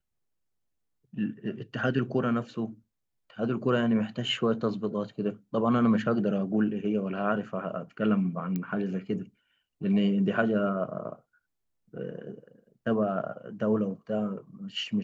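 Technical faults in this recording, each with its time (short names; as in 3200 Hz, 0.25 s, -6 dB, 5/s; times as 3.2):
8.56 pop -19 dBFS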